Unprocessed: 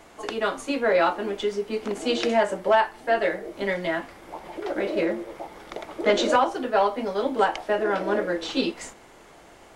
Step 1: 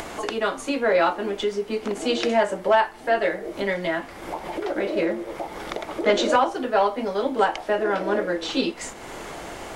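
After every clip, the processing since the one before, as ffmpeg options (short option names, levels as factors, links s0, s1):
-af "acompressor=mode=upward:threshold=0.0631:ratio=2.5,volume=1.12"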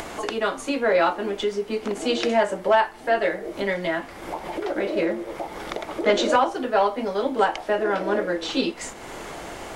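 -af anull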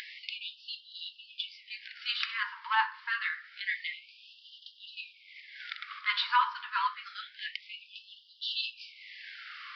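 -af "bandreject=f=51.24:t=h:w=4,bandreject=f=102.48:t=h:w=4,bandreject=f=153.72:t=h:w=4,bandreject=f=204.96:t=h:w=4,bandreject=f=256.2:t=h:w=4,bandreject=f=307.44:t=h:w=4,bandreject=f=358.68:t=h:w=4,bandreject=f=409.92:t=h:w=4,bandreject=f=461.16:t=h:w=4,bandreject=f=512.4:t=h:w=4,bandreject=f=563.64:t=h:w=4,bandreject=f=614.88:t=h:w=4,bandreject=f=666.12:t=h:w=4,bandreject=f=717.36:t=h:w=4,bandreject=f=768.6:t=h:w=4,bandreject=f=819.84:t=h:w=4,bandreject=f=871.08:t=h:w=4,bandreject=f=922.32:t=h:w=4,bandreject=f=973.56:t=h:w=4,bandreject=f=1024.8:t=h:w=4,bandreject=f=1076.04:t=h:w=4,bandreject=f=1127.28:t=h:w=4,bandreject=f=1178.52:t=h:w=4,bandreject=f=1229.76:t=h:w=4,bandreject=f=1281:t=h:w=4,bandreject=f=1332.24:t=h:w=4,bandreject=f=1383.48:t=h:w=4,bandreject=f=1434.72:t=h:w=4,bandreject=f=1485.96:t=h:w=4,bandreject=f=1537.2:t=h:w=4,bandreject=f=1588.44:t=h:w=4,bandreject=f=1639.68:t=h:w=4,bandreject=f=1690.92:t=h:w=4,bandreject=f=1742.16:t=h:w=4,bandreject=f=1793.4:t=h:w=4,bandreject=f=1844.64:t=h:w=4,bandreject=f=1895.88:t=h:w=4,bandreject=f=1947.12:t=h:w=4,aresample=11025,aresample=44100,afftfilt=real='re*gte(b*sr/1024,870*pow(2800/870,0.5+0.5*sin(2*PI*0.27*pts/sr)))':imag='im*gte(b*sr/1024,870*pow(2800/870,0.5+0.5*sin(2*PI*0.27*pts/sr)))':win_size=1024:overlap=0.75,volume=0.75"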